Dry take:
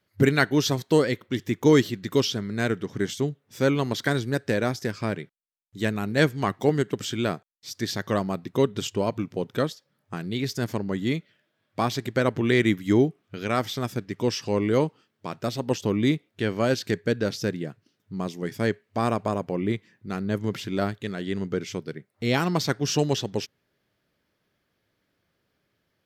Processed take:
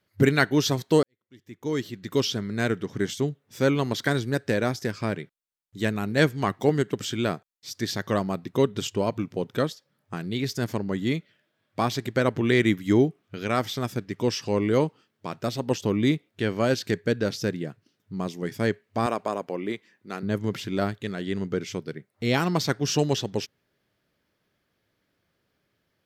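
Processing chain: 1.03–2.31 fade in quadratic; 19.06–20.23 Bessel high-pass 340 Hz, order 2

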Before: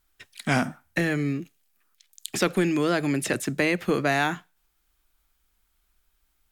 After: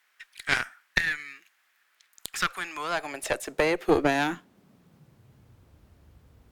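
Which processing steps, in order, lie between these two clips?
added noise brown -48 dBFS; high-pass sweep 1700 Hz -> 73 Hz, 2.1–5.82; added harmonics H 2 -9 dB, 3 -17 dB, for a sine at -6.5 dBFS

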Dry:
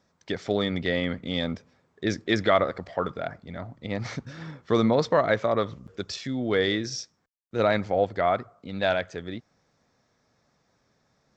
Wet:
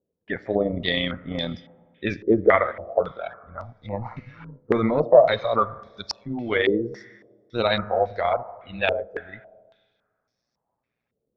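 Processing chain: bin magnitudes rounded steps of 15 dB; spectral noise reduction 14 dB; AM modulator 120 Hz, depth 40%; Schroeder reverb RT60 1.7 s, combs from 26 ms, DRR 17 dB; stepped low-pass 3.6 Hz 450–5300 Hz; gain +2.5 dB

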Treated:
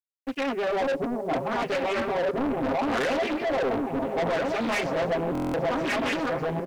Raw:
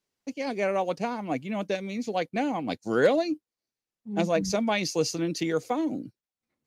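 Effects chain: regenerating reverse delay 0.667 s, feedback 52%, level -1 dB; low shelf 370 Hz -2.5 dB; comb 7.5 ms, depth 97%; in parallel at +3 dB: limiter -18.5 dBFS, peak gain reduction 10.5 dB; on the sum: LFO low-pass sine 0.7 Hz 440–2300 Hz; soft clip -19.5 dBFS, distortion -7 dB; bit-crush 9-bit; on a send: delay with a stepping band-pass 0.538 s, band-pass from 530 Hz, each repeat 0.7 oct, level -9 dB; on the sum: stuck buffer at 5.33, samples 1024, times 8; Doppler distortion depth 0.57 ms; gain -4 dB

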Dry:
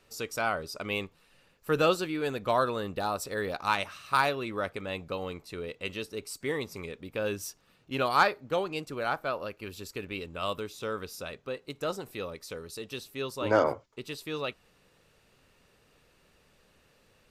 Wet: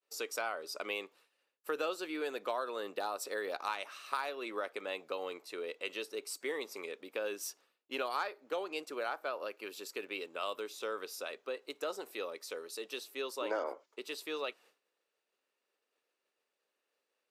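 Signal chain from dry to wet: HPF 330 Hz 24 dB/oct; expander -54 dBFS; compressor 4:1, threshold -32 dBFS, peak gain reduction 13 dB; gain -1.5 dB

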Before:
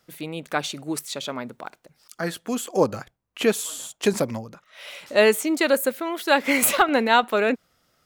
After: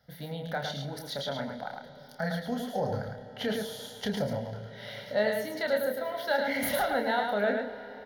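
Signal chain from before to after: HPF 43 Hz; tilt -2 dB/oct; de-hum 56.42 Hz, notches 12; in parallel at +1.5 dB: compressor, threshold -31 dBFS, peak gain reduction 18 dB; on the sum: limiter -10.5 dBFS, peak gain reduction 7 dB; fixed phaser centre 1700 Hz, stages 8; doubler 29 ms -6 dB; echo 0.108 s -4.5 dB; on a send at -14 dB: reverb RT60 5.5 s, pre-delay 0.104 s; on the sum: gain -6.5 dB

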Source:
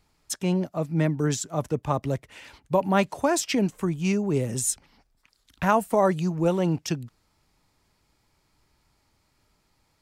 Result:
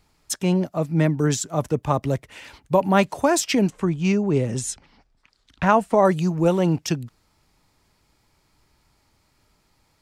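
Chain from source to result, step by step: 3.7–6.05 Bessel low-pass 5100 Hz, order 2; gain +4 dB

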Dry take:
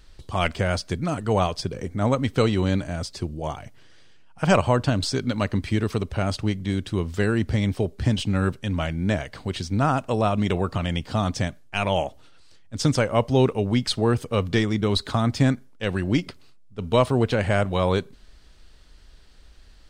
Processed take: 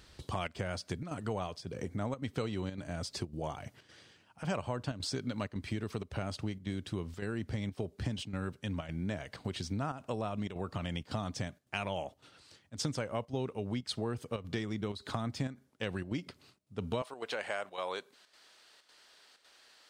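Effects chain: HPF 81 Hz 12 dB/oct, from 17.02 s 610 Hz; compressor 4:1, threshold -35 dBFS, peak gain reduction 18.5 dB; chopper 1.8 Hz, depth 60%, duty 85%

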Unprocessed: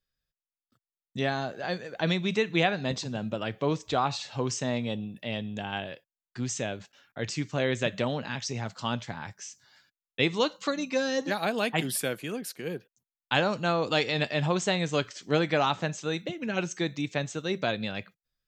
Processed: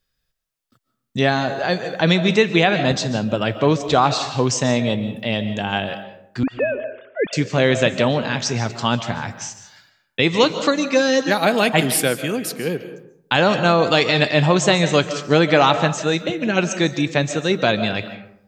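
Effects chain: 6.43–7.33 sine-wave speech; digital reverb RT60 0.72 s, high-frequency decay 0.5×, pre-delay 0.105 s, DRR 10.5 dB; maximiser +12 dB; gain -1 dB

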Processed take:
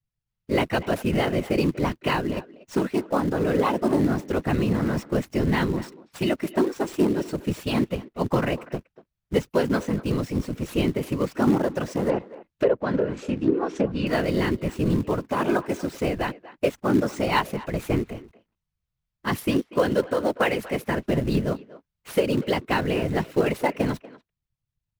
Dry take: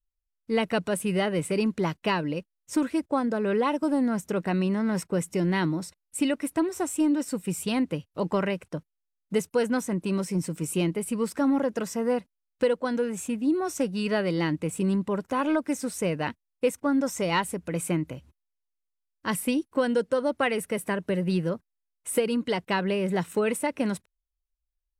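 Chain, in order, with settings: median filter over 5 samples; whisperiser; in parallel at -10 dB: companded quantiser 4-bit; 12.09–14.07 on the sum: treble ducked by the level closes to 1500 Hz, closed at -17.5 dBFS; speakerphone echo 0.24 s, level -17 dB

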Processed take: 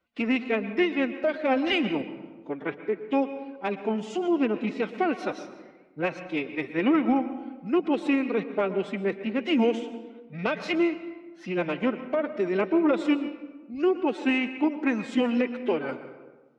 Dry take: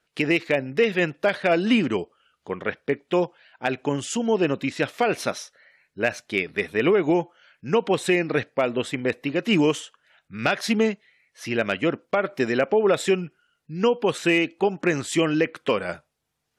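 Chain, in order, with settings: notch 1100 Hz, Q 12; formant-preserving pitch shift +7.5 st; tape spacing loss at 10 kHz 24 dB; reverb RT60 1.3 s, pre-delay 0.11 s, DRR 11 dB; gain -1.5 dB

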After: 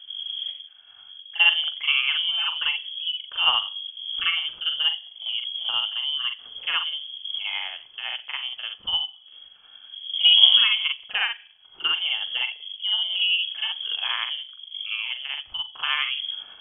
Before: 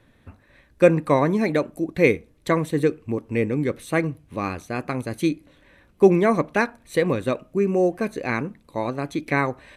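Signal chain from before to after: wind noise 80 Hz -28 dBFS; granular stretch 1.7×, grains 0.199 s; inverted band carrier 3300 Hz; gain -3.5 dB

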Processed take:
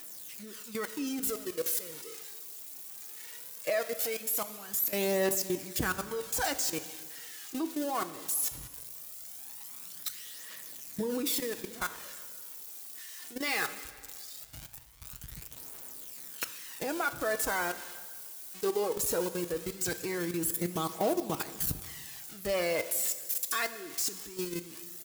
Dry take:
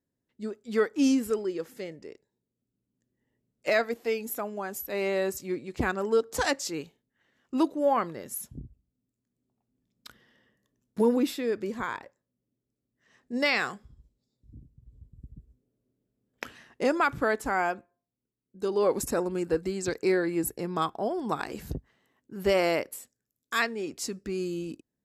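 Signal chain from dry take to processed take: switching spikes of -22.5 dBFS; comb 6.3 ms, depth 38%; level quantiser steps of 15 dB; phaser 0.19 Hz, delay 2.9 ms, feedback 45%; plate-style reverb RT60 1.7 s, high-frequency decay 0.95×, DRR 11 dB; gain -1.5 dB

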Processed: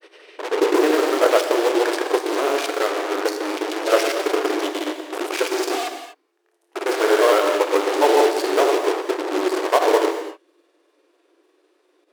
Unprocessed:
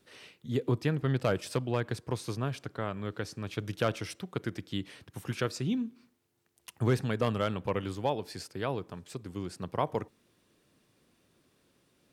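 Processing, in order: on a send: flutter echo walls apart 5.1 m, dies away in 0.23 s; on the sum: grains 0.1 s; tilt -3 dB/oct; in parallel at -10 dB: fuzz box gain 46 dB, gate -38 dBFS; on the sum: brick-wall FIR high-pass 300 Hz; non-linear reverb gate 0.27 s flat, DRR 6 dB; gain +8 dB

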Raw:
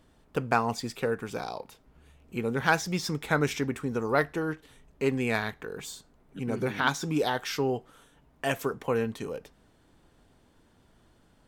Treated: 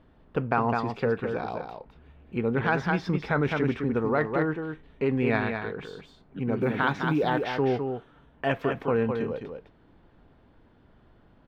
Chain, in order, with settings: air absorption 360 m; echo 0.207 s -6.5 dB; in parallel at +3 dB: negative-ratio compressor -27 dBFS, ratio -1; 6.61–7.58 on the sum: short-mantissa float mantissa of 6-bit; gain -4 dB

